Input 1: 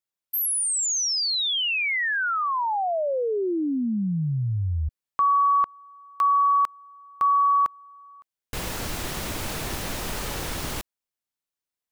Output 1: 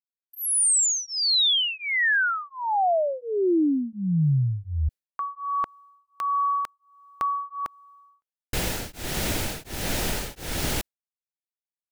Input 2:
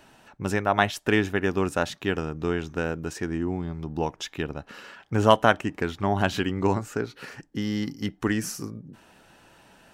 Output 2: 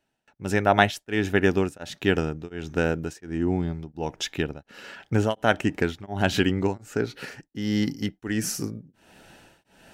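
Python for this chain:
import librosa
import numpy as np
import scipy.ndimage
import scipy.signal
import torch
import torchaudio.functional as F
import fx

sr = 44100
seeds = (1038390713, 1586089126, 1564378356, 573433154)

y = fx.gate_hold(x, sr, open_db=-43.0, close_db=-52.0, hold_ms=12.0, range_db=-26, attack_ms=1.3, release_ms=182.0)
y = fx.peak_eq(y, sr, hz=1100.0, db=-9.0, octaves=0.38)
y = y * np.abs(np.cos(np.pi * 1.4 * np.arange(len(y)) / sr))
y = F.gain(torch.from_numpy(y), 5.0).numpy()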